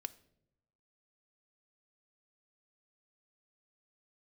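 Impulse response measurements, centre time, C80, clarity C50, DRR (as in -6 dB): 2 ms, 22.0 dB, 19.0 dB, 11.0 dB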